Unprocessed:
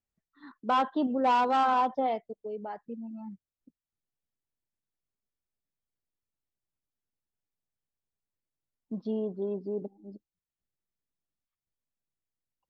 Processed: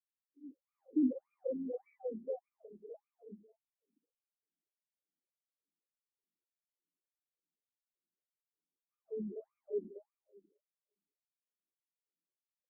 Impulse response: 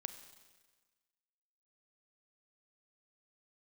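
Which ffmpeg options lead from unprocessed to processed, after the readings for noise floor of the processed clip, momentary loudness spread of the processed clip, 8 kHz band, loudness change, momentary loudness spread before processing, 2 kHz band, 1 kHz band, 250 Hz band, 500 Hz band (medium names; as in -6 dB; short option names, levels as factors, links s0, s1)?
under -85 dBFS, 23 LU, no reading, -10.0 dB, 17 LU, under -35 dB, -37.5 dB, -5.0 dB, -8.0 dB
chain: -filter_complex "[0:a]aeval=exprs='if(lt(val(0),0),0.251*val(0),val(0))':c=same,bandreject=f=60:t=h:w=6,bandreject=f=120:t=h:w=6,bandreject=f=180:t=h:w=6,bandreject=f=240:t=h:w=6,acrossover=split=470|1600[s0][s1][s2];[s2]adelay=160[s3];[s1]adelay=290[s4];[s0][s4][s3]amix=inputs=3:normalize=0,asubboost=boost=7:cutoff=69,asuperstop=centerf=1300:order=12:qfactor=0.53,asplit=2[s5][s6];[1:a]atrim=start_sample=2205,adelay=67[s7];[s6][s7]afir=irnorm=-1:irlink=0,volume=0.266[s8];[s5][s8]amix=inputs=2:normalize=0,afftfilt=real='re*between(b*sr/1024,250*pow(1800/250,0.5+0.5*sin(2*PI*1.7*pts/sr))/1.41,250*pow(1800/250,0.5+0.5*sin(2*PI*1.7*pts/sr))*1.41)':imag='im*between(b*sr/1024,250*pow(1800/250,0.5+0.5*sin(2*PI*1.7*pts/sr))/1.41,250*pow(1800/250,0.5+0.5*sin(2*PI*1.7*pts/sr))*1.41)':win_size=1024:overlap=0.75,volume=2"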